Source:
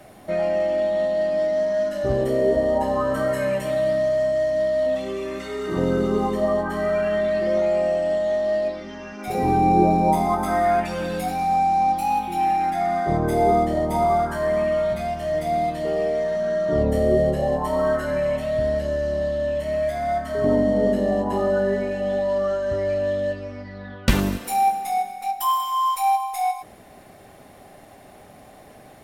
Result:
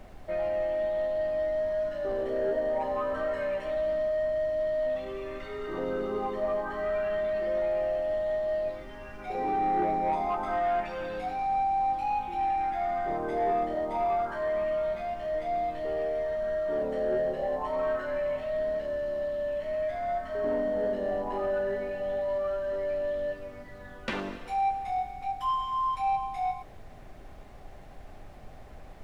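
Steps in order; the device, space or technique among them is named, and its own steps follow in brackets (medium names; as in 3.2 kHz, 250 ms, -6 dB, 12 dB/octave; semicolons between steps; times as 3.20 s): aircraft cabin announcement (band-pass 360–3000 Hz; saturation -14.5 dBFS, distortion -22 dB; brown noise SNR 16 dB); trim -6 dB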